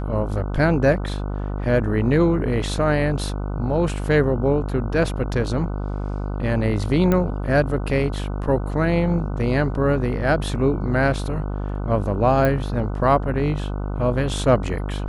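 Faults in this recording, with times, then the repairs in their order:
buzz 50 Hz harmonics 30 -26 dBFS
7.12 s: pop -9 dBFS
12.45 s: pop -9 dBFS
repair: de-click; de-hum 50 Hz, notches 30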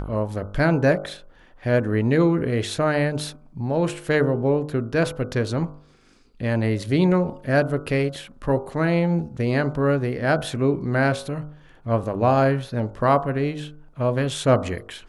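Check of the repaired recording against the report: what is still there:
nothing left

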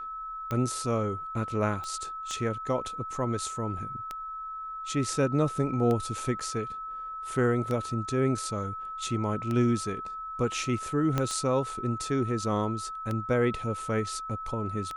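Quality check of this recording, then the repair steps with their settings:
tick 33 1/3 rpm -19 dBFS
whine 1.3 kHz -35 dBFS
1.84 s: pop -25 dBFS
6.40–6.41 s: dropout 6.2 ms
11.18 s: pop -13 dBFS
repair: de-click; band-stop 1.3 kHz, Q 30; interpolate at 6.40 s, 6.2 ms

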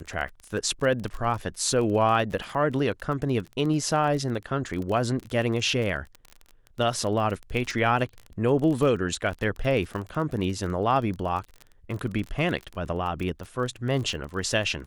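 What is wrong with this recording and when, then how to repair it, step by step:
crackle 28 per s -31 dBFS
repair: de-click

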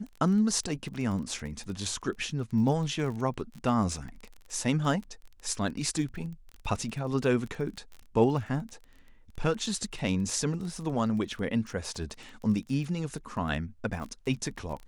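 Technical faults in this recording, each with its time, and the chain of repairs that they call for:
crackle 25 per s -36 dBFS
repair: de-click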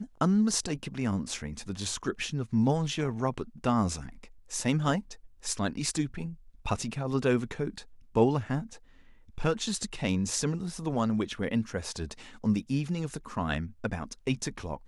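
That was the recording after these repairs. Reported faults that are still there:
nothing left

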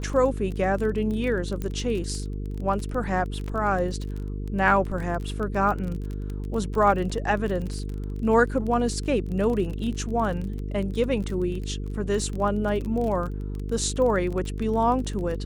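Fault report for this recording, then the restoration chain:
buzz 50 Hz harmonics 9 -31 dBFS
crackle 27 per s -30 dBFS
1.62 s: pop -18 dBFS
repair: de-click; de-hum 50 Hz, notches 9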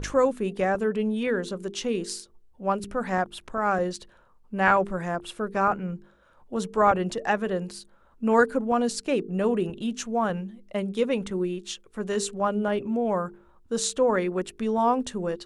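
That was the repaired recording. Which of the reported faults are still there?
nothing left

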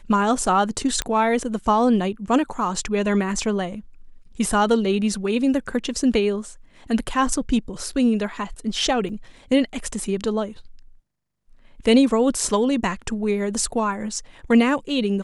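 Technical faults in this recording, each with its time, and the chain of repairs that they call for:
1.02 s: pop -8 dBFS
9.09 s: dropout 4.2 ms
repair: de-click; interpolate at 9.09 s, 4.2 ms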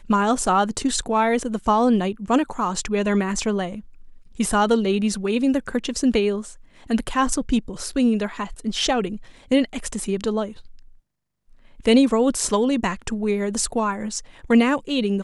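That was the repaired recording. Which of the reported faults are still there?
1.02 s: pop

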